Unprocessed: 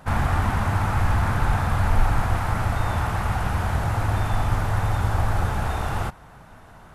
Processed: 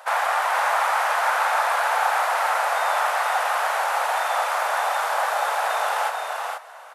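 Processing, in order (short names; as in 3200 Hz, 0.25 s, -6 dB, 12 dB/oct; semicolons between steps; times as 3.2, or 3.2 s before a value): steep high-pass 530 Hz 48 dB/oct; on a send: tapped delay 0.443/0.477 s -8.5/-6 dB; on the sum: gain +6 dB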